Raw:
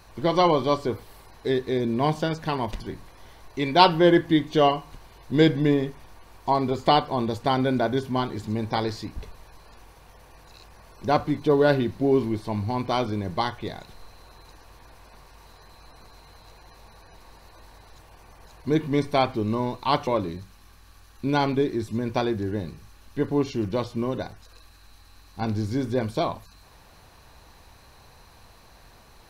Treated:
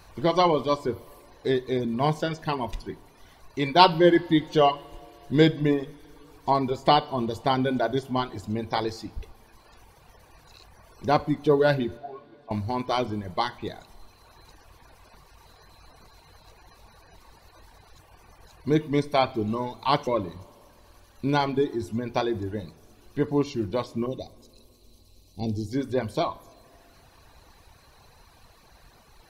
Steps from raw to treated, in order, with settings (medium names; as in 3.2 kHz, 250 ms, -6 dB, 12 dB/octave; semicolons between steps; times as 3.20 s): 11.97–12.51 s: vowel filter a; reverb removal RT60 1.3 s; 24.06–25.73 s: Butterworth band-stop 1.4 kHz, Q 0.53; two-slope reverb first 0.53 s, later 3.7 s, from -16 dB, DRR 15 dB